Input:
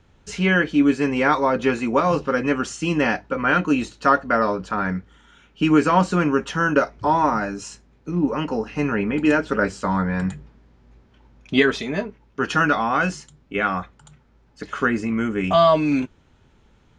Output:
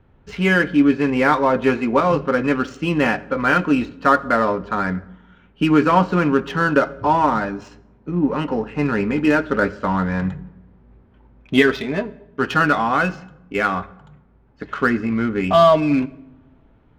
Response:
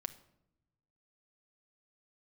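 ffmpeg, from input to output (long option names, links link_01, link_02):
-filter_complex "[0:a]adynamicsmooth=sensitivity=4.5:basefreq=2100,asplit=2[link_01][link_02];[1:a]atrim=start_sample=2205,asetrate=32193,aresample=44100,lowpass=6100[link_03];[link_02][link_03]afir=irnorm=-1:irlink=0,volume=-1dB[link_04];[link_01][link_04]amix=inputs=2:normalize=0,volume=-3dB"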